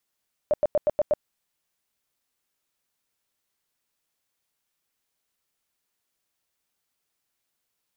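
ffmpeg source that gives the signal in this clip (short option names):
-f lavfi -i "aevalsrc='0.141*sin(2*PI*599*mod(t,0.12))*lt(mod(t,0.12),16/599)':d=0.72:s=44100"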